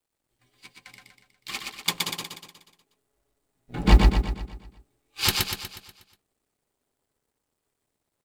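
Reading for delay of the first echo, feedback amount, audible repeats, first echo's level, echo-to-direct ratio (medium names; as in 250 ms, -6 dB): 121 ms, 50%, 6, -3.0 dB, -1.5 dB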